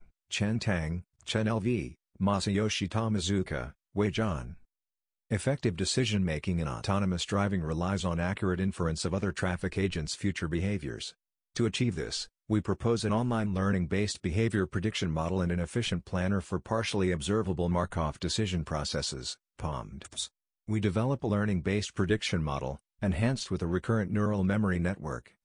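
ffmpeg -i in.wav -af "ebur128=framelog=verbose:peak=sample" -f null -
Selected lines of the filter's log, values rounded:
Integrated loudness:
  I:         -31.0 LUFS
  Threshold: -41.1 LUFS
Loudness range:
  LRA:         2.4 LU
  Threshold: -51.2 LUFS
  LRA low:   -32.5 LUFS
  LRA high:  -30.2 LUFS
Sample peak:
  Peak:      -13.5 dBFS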